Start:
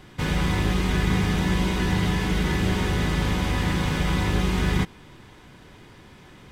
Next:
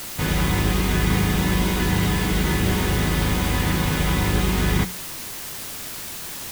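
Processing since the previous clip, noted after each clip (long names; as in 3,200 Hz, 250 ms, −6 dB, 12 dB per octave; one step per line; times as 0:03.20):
bit-depth reduction 6 bits, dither triangular
mains-hum notches 60/120/180 Hz
level +2.5 dB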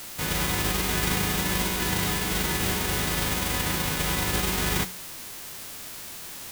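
spectral envelope flattened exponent 0.6
level −6 dB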